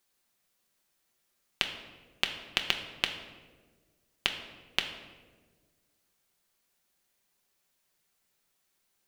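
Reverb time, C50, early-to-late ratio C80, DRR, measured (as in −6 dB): 1.5 s, 8.0 dB, 10.0 dB, 3.5 dB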